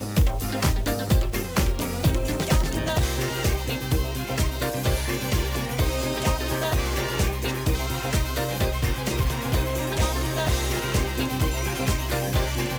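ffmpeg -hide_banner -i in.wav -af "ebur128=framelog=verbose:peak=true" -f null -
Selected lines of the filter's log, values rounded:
Integrated loudness:
  I:         -25.3 LUFS
  Threshold: -35.3 LUFS
Loudness range:
  LRA:         1.0 LU
  Threshold: -45.4 LUFS
  LRA low:   -25.7 LUFS
  LRA high:  -24.8 LUFS
True peak:
  Peak:       -9.3 dBFS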